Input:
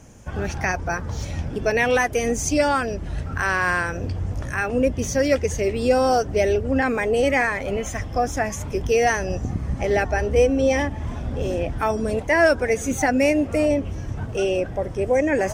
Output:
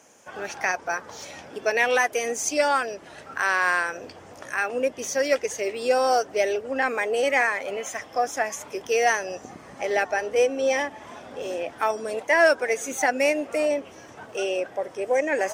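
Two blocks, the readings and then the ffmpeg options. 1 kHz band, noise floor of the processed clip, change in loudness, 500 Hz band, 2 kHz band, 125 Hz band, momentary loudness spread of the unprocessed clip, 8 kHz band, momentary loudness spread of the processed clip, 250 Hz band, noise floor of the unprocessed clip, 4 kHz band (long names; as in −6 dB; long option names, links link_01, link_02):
−1.0 dB, −46 dBFS, −2.5 dB, −3.0 dB, −0.5 dB, below −25 dB, 9 LU, −0.5 dB, 15 LU, −11.0 dB, −32 dBFS, 0.0 dB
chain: -af "highpass=490,aeval=exprs='0.473*(cos(1*acos(clip(val(0)/0.473,-1,1)))-cos(1*PI/2))+0.0075*(cos(7*acos(clip(val(0)/0.473,-1,1)))-cos(7*PI/2))':channel_layout=same"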